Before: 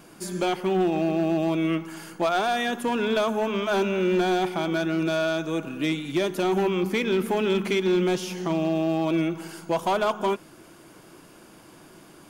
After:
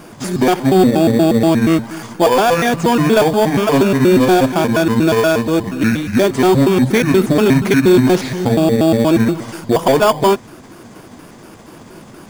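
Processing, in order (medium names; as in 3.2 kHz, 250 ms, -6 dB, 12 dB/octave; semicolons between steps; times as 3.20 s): pitch shift switched off and on -6 st, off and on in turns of 119 ms; in parallel at -1.5 dB: sample-and-hold 11×; on the sum: trim +7.5 dB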